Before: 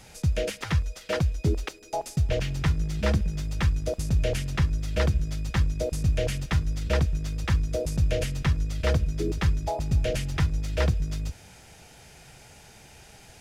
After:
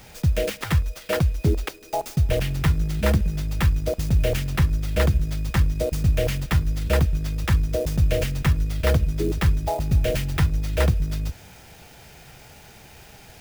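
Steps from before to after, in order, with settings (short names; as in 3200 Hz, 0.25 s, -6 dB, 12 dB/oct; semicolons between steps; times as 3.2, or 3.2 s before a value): clock jitter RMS 0.026 ms; gain +4 dB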